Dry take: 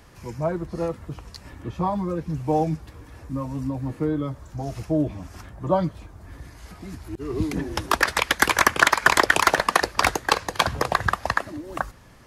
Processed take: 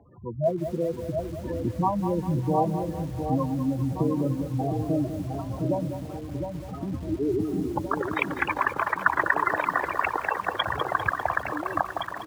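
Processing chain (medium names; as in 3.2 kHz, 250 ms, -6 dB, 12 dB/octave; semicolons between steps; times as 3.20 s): local Wiener filter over 15 samples; recorder AGC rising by 7.6 dB/s; high-pass 64 Hz 24 dB/octave; bass shelf 120 Hz -5 dB; compression 2:1, threshold -27 dBFS, peak gain reduction 9.5 dB; saturation -9 dBFS, distortion -27 dB; spectral gate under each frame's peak -10 dB strong; delay 215 ms -22.5 dB; LFO low-pass sine 3.7 Hz 800–3700 Hz; 2.83–3.38 s: bass shelf 260 Hz +3.5 dB; echo whose repeats swap between lows and highs 710 ms, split 1.4 kHz, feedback 67%, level -6 dB; bit-crushed delay 199 ms, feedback 55%, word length 7-bit, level -9.5 dB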